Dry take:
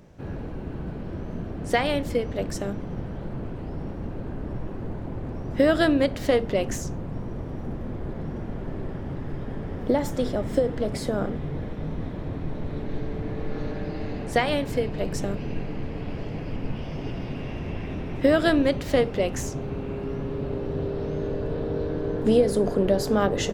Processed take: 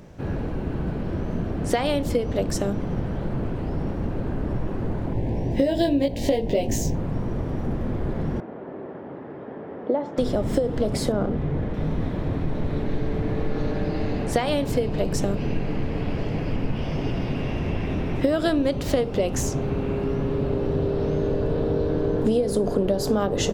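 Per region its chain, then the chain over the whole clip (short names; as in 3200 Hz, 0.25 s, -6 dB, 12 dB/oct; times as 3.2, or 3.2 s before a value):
5.13–6.95 Butterworth band-stop 1300 Hz, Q 1.6 + doubler 18 ms -3 dB + decimation joined by straight lines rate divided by 2×
8.4–10.18 HPF 370 Hz + tape spacing loss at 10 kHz 45 dB
11.12–11.74 air absorption 240 m + running maximum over 3 samples
whole clip: dynamic EQ 1900 Hz, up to -6 dB, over -45 dBFS, Q 1.5; compressor 6:1, threshold -24 dBFS; gain +6 dB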